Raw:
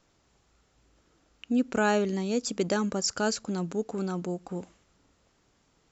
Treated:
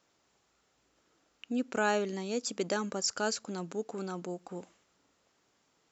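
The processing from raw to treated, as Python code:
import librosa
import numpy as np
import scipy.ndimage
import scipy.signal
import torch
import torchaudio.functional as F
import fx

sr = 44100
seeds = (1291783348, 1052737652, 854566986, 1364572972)

y = fx.highpass(x, sr, hz=340.0, slope=6)
y = y * 10.0 ** (-2.5 / 20.0)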